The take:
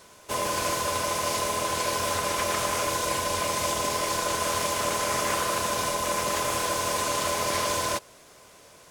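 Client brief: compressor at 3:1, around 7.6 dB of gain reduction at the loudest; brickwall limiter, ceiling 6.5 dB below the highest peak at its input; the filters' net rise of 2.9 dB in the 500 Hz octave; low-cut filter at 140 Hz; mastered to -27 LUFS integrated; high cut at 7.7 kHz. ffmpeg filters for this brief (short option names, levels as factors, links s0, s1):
-af "highpass=140,lowpass=7700,equalizer=f=500:t=o:g=3.5,acompressor=threshold=0.0224:ratio=3,volume=2.66,alimiter=limit=0.126:level=0:latency=1"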